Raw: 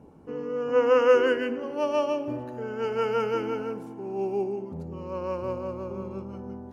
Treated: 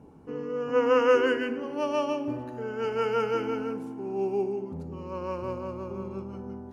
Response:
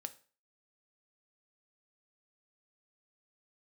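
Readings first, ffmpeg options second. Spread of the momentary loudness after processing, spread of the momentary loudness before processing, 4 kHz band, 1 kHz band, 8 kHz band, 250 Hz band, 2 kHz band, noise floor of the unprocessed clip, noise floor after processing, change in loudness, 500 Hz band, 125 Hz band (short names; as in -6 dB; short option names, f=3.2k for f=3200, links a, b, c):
15 LU, 16 LU, 0.0 dB, 0.0 dB, n/a, +0.5 dB, 0.0 dB, -42 dBFS, -42 dBFS, -1.5 dB, -2.0 dB, -0.5 dB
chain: -filter_complex "[0:a]equalizer=f=570:t=o:w=0.53:g=-3.5,asplit=2[a][b];[1:a]atrim=start_sample=2205,asetrate=22932,aresample=44100[c];[b][c]afir=irnorm=-1:irlink=0,volume=-0.5dB[d];[a][d]amix=inputs=2:normalize=0,volume=-5.5dB"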